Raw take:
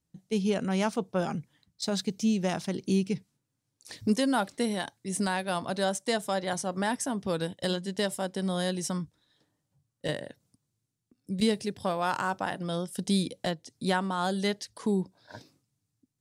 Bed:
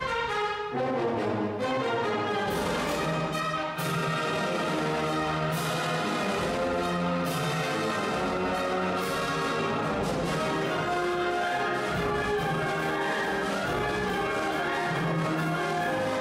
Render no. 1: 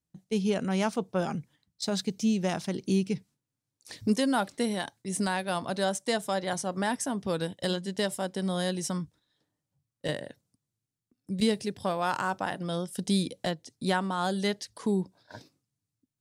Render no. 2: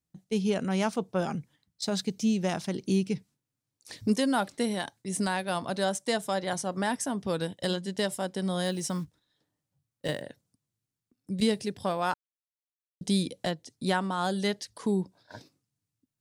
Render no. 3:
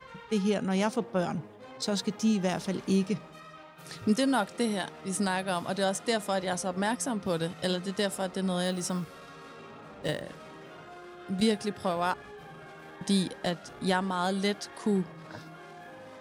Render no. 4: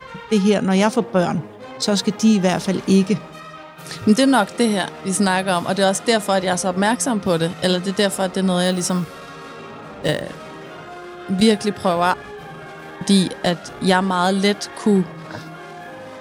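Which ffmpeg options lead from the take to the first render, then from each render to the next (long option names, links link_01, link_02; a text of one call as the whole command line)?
ffmpeg -i in.wav -af "agate=range=-6dB:threshold=-53dB:ratio=16:detection=peak" out.wav
ffmpeg -i in.wav -filter_complex "[0:a]asettb=1/sr,asplit=3[link_01][link_02][link_03];[link_01]atrim=end=8.644[link_04];[link_02]atrim=start=8.64:end=10.22,asetpts=PTS-STARTPTS,afade=type=in:duration=0.004:curve=qsin,afade=type=out:start_time=1.576:duration=0.004:curve=qsin,acrusher=bits=7:mode=log:mix=0:aa=0.000001[link_05];[link_03]atrim=start=10.216[link_06];[link_04][link_05]acrossfade=duration=0.004:curve1=hsin:curve2=qsin[link_07];[link_07][link_06]acrossfade=duration=0.004:curve1=qsin:curve2=hsin,asplit=3[link_08][link_09][link_10];[link_08]atrim=end=12.14,asetpts=PTS-STARTPTS,afade=type=out:start_time=12.136:duration=0.004:curve=hsin[link_11];[link_09]atrim=start=12.14:end=13.01,asetpts=PTS-STARTPTS,volume=0[link_12];[link_10]atrim=start=13.01,asetpts=PTS-STARTPTS,afade=type=in:duration=0.004:curve=hsin[link_13];[link_11][link_12][link_13]concat=n=3:v=0:a=1" out.wav
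ffmpeg -i in.wav -i bed.wav -filter_complex "[1:a]volume=-19dB[link_01];[0:a][link_01]amix=inputs=2:normalize=0" out.wav
ffmpeg -i in.wav -af "volume=11.5dB,alimiter=limit=-3dB:level=0:latency=1" out.wav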